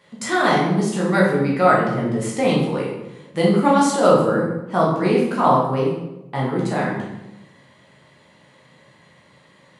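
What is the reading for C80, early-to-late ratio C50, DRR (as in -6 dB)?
5.5 dB, 2.0 dB, -5.0 dB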